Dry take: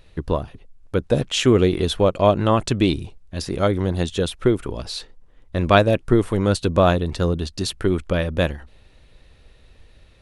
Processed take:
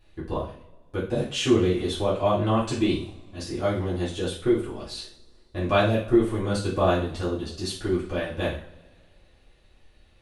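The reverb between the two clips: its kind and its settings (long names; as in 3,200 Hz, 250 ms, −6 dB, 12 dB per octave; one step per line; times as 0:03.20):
coupled-rooms reverb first 0.42 s, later 2 s, from −25 dB, DRR −9.5 dB
level −15 dB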